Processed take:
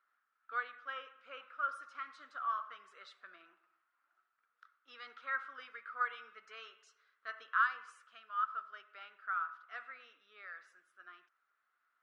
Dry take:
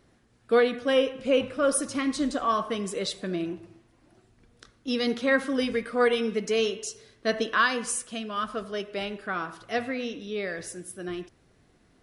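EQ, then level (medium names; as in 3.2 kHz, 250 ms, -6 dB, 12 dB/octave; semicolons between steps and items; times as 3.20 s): ladder band-pass 1.4 kHz, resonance 80%; -4.0 dB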